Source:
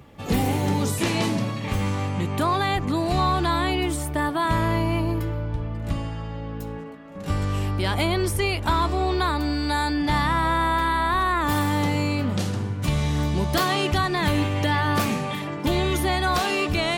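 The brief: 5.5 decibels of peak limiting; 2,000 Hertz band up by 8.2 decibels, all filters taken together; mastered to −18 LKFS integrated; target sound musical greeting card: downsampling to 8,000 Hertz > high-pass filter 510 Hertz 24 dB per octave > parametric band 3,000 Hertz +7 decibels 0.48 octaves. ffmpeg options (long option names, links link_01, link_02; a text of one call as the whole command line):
ffmpeg -i in.wav -af "equalizer=frequency=2000:width_type=o:gain=8.5,alimiter=limit=-13dB:level=0:latency=1,aresample=8000,aresample=44100,highpass=frequency=510:width=0.5412,highpass=frequency=510:width=1.3066,equalizer=frequency=3000:width_type=o:width=0.48:gain=7,volume=5.5dB" out.wav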